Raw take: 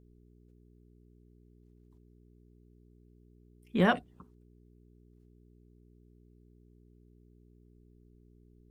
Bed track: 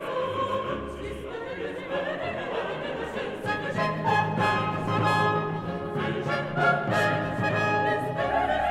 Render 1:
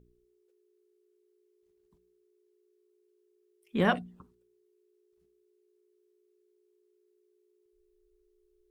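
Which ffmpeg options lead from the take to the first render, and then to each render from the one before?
-af "bandreject=f=60:t=h:w=4,bandreject=f=120:t=h:w=4,bandreject=f=180:t=h:w=4,bandreject=f=240:t=h:w=4,bandreject=f=300:t=h:w=4"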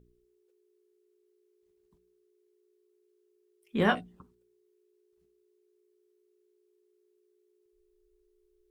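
-filter_complex "[0:a]asettb=1/sr,asplit=3[a][b][c];[a]atrim=end=3.794[d];[b]atrim=start=3.79:end=4.19,asetpts=PTS-STARTPTS,afade=t=in:d=0.004:c=qsin,afade=t=out:st=0.396:d=0.004:c=qsin,asplit=2[e][f];[f]adelay=19,volume=-6dB[g];[e][g]amix=inputs=2:normalize=0,atrim=end_sample=17640[h];[c]atrim=start=4.186[i];[d][h]acrossfade=d=0.004:c1=hsin:c2=qsin[j];[j][i]acrossfade=d=0.004:c1=qsin:c2=hsin"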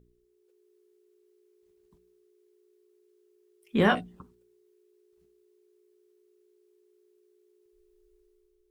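-af "alimiter=limit=-18dB:level=0:latency=1:release=17,dynaudnorm=f=130:g=7:m=5dB"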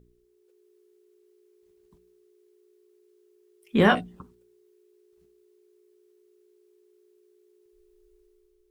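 -af "volume=3.5dB"

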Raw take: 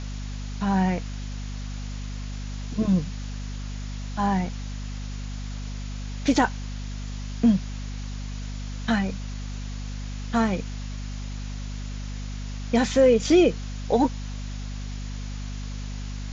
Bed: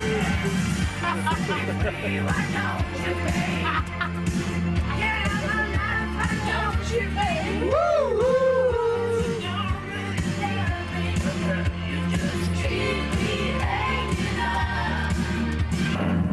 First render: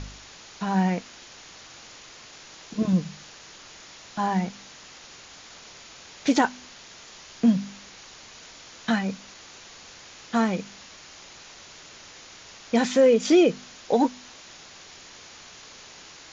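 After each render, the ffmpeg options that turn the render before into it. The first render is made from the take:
-af "bandreject=f=50:t=h:w=4,bandreject=f=100:t=h:w=4,bandreject=f=150:t=h:w=4,bandreject=f=200:t=h:w=4,bandreject=f=250:t=h:w=4"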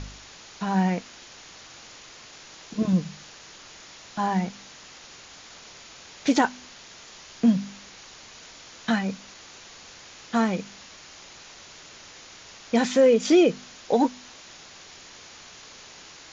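-af anull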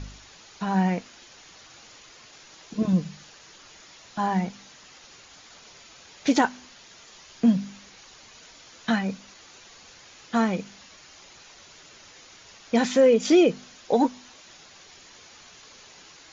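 -af "afftdn=nr=6:nf=-47"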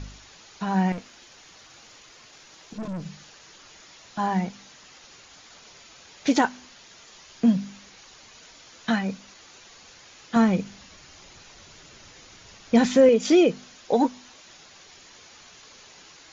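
-filter_complex "[0:a]asettb=1/sr,asplit=3[a][b][c];[a]atrim=end=0.924[d];[b]atrim=start=0.92:end=3.06,asetpts=PTS-STARTPTS,afade=t=in:d=0.004:c=qsin,afade=t=out:st=2.136:d=0.004:c=qsin,aeval=exprs='(tanh(31.6*val(0)+0.25)-tanh(0.25))/31.6':c=same[e];[c]atrim=start=3.056[f];[d][e]acrossfade=d=0.004:c1=hsin:c2=qsin[g];[g][f]acrossfade=d=0.004:c1=qsin:c2=hsin,asettb=1/sr,asplit=3[h][i][j];[h]atrim=end=10.364[k];[i]atrim=start=10.36:end=13.09,asetpts=PTS-STARTPTS,afade=t=in:d=0.004:c=qsin,afade=t=out:st=2.726:d=0.004:c=qsin,lowshelf=f=220:g=10[l];[j]atrim=start=13.086[m];[k][l]acrossfade=d=0.004:c1=hsin:c2=qsin[n];[n][m]acrossfade=d=0.004:c1=qsin:c2=hsin"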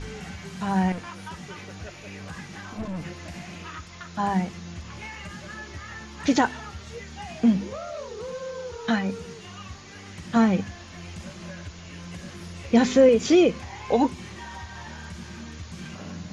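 -filter_complex "[1:a]volume=-14.5dB[a];[0:a][a]amix=inputs=2:normalize=0"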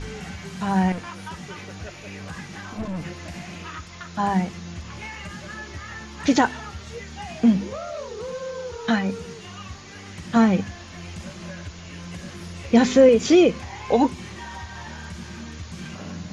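-af "volume=2.5dB"

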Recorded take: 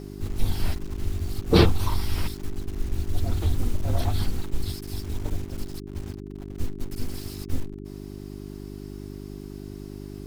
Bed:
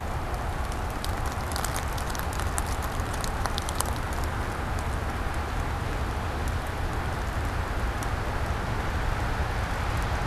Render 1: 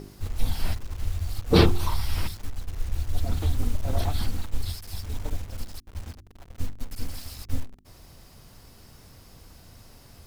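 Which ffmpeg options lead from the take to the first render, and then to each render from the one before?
-af "bandreject=f=50:t=h:w=4,bandreject=f=100:t=h:w=4,bandreject=f=150:t=h:w=4,bandreject=f=200:t=h:w=4,bandreject=f=250:t=h:w=4,bandreject=f=300:t=h:w=4,bandreject=f=350:t=h:w=4,bandreject=f=400:t=h:w=4"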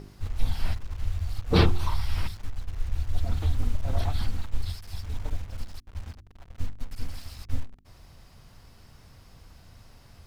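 -af "lowpass=f=3.5k:p=1,equalizer=f=350:t=o:w=1.9:g=-5.5"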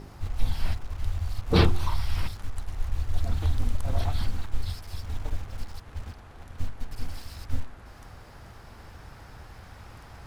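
-filter_complex "[1:a]volume=-19.5dB[a];[0:a][a]amix=inputs=2:normalize=0"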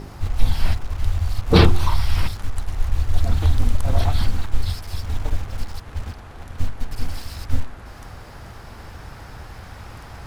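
-af "volume=8dB,alimiter=limit=-1dB:level=0:latency=1"

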